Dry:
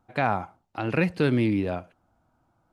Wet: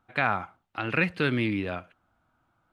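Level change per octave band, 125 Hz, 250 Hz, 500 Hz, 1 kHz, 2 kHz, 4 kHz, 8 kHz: -4.5 dB, -4.5 dB, -4.5 dB, -2.0 dB, +4.0 dB, +3.0 dB, no reading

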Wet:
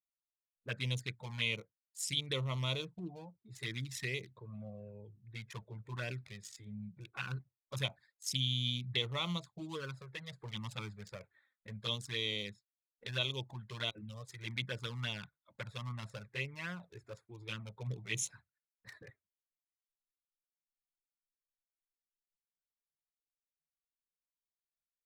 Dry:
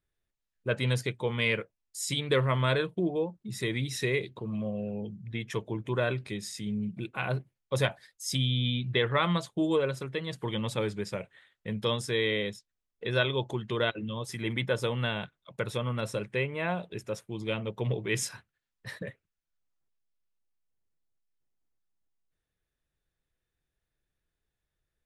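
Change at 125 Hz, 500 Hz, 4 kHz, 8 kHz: -8.5 dB, -16.5 dB, -3.0 dB, -5.0 dB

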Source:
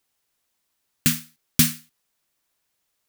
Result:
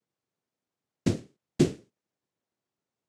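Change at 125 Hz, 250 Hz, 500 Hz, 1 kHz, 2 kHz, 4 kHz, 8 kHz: -2.5 dB, -0.5 dB, +15.5 dB, -4.5 dB, -14.0 dB, -15.5 dB, -19.5 dB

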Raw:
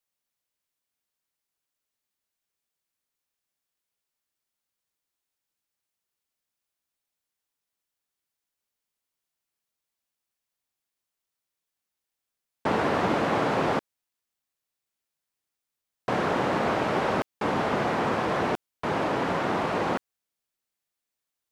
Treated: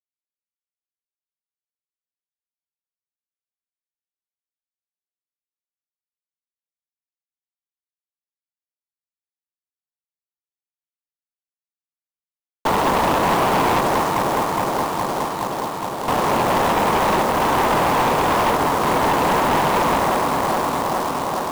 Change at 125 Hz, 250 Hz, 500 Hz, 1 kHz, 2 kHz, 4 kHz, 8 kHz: +7.0 dB, +6.5 dB, +7.5 dB, +12.0 dB, +7.5 dB, +11.0 dB, +18.0 dB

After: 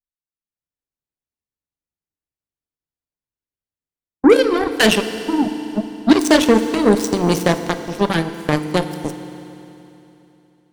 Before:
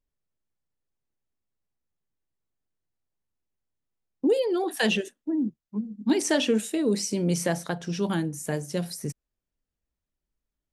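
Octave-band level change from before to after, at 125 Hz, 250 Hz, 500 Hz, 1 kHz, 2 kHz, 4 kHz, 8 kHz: +7.0 dB, +10.0 dB, +10.0 dB, +14.0 dB, +11.0 dB, +10.0 dB, +4.5 dB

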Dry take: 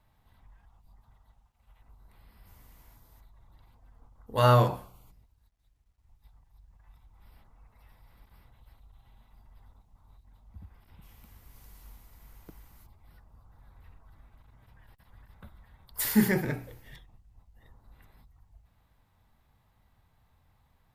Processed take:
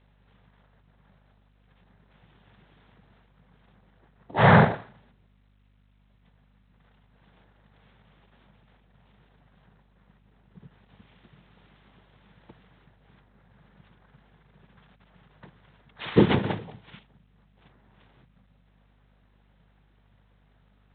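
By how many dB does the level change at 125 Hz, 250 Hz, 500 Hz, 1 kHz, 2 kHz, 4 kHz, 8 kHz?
+3.5 dB, +4.5 dB, +4.0 dB, +5.0 dB, +9.0 dB, +3.5 dB, under -35 dB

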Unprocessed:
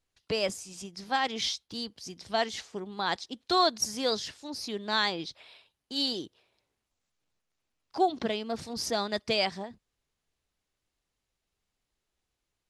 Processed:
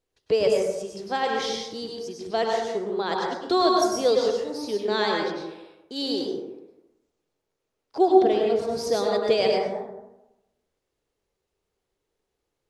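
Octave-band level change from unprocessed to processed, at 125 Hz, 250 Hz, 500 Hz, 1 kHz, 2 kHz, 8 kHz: +3.0 dB, +7.5 dB, +11.5 dB, +5.0 dB, +1.5 dB, 0.0 dB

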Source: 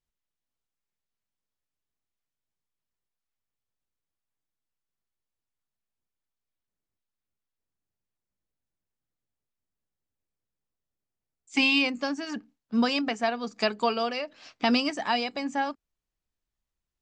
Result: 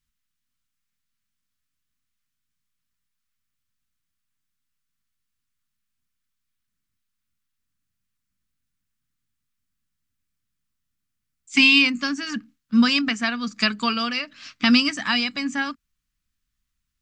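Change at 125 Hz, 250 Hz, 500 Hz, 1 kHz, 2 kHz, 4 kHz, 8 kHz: no reading, +7.0 dB, -7.0 dB, -0.5 dB, +8.5 dB, +8.5 dB, +8.5 dB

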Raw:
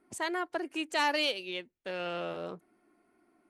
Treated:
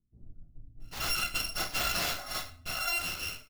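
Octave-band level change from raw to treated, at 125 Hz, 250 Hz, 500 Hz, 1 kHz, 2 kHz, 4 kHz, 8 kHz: +7.0 dB, -9.5 dB, -9.5 dB, -3.5 dB, +1.0 dB, +2.5 dB, +11.0 dB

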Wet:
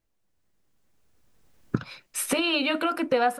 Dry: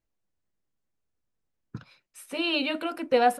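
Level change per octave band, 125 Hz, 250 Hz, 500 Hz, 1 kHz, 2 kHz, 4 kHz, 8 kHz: +10.0 dB, +3.5 dB, 0.0 dB, -0.5 dB, +3.0 dB, +2.0 dB, +13.5 dB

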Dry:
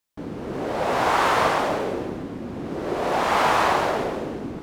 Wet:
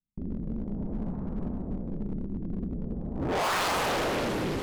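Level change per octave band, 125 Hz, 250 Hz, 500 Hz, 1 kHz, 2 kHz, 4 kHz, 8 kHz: +1.0 dB, -2.0 dB, -9.5 dB, -11.5 dB, -8.5 dB, -4.5 dB, -3.0 dB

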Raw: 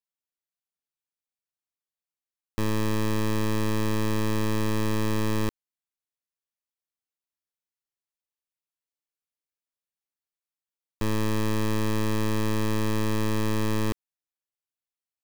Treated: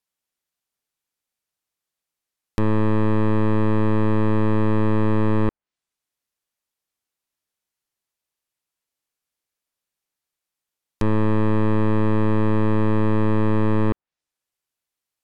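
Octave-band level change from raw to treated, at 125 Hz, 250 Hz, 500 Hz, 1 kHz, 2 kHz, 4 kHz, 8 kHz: +7.0 dB, +7.0 dB, +7.0 dB, +6.0 dB, +1.5 dB, no reading, under -15 dB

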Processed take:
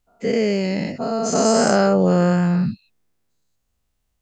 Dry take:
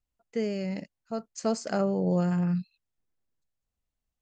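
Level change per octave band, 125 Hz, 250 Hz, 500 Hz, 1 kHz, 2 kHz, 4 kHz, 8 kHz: +9.0 dB, +10.0 dB, +12.5 dB, +14.5 dB, +15.5 dB, +15.5 dB, +17.5 dB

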